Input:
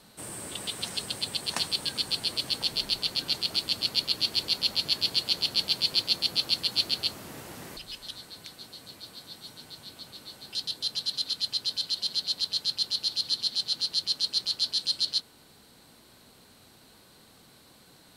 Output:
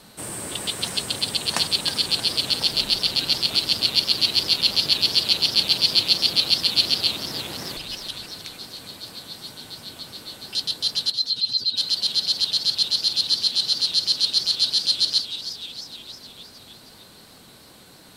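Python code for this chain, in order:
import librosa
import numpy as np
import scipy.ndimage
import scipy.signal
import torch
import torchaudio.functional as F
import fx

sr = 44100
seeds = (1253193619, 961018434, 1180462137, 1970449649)

y = fx.spec_expand(x, sr, power=2.0, at=(11.1, 11.76), fade=0.02)
y = fx.echo_warbled(y, sr, ms=308, feedback_pct=63, rate_hz=2.8, cents=174, wet_db=-11.5)
y = y * 10.0 ** (7.0 / 20.0)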